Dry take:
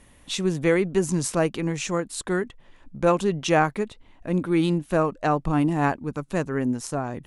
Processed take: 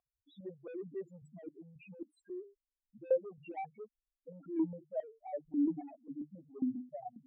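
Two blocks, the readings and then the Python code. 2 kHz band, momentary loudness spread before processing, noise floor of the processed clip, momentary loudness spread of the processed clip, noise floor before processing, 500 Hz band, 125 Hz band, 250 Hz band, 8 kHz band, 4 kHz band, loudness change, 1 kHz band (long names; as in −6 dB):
−31.0 dB, 8 LU, below −85 dBFS, 19 LU, −54 dBFS, −15.5 dB, −28.0 dB, −14.0 dB, below −40 dB, below −35 dB, −15.0 dB, −21.5 dB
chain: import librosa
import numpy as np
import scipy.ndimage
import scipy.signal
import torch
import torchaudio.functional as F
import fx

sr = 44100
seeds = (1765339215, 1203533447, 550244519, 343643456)

y = fx.hum_notches(x, sr, base_hz=50, count=9)
y = fx.spec_topn(y, sr, count=1)
y = 10.0 ** (-25.5 / 20.0) * np.tanh(y / 10.0 ** (-25.5 / 20.0))
y = fx.vowel_held(y, sr, hz=7.4)
y = F.gain(torch.from_numpy(y), 4.5).numpy()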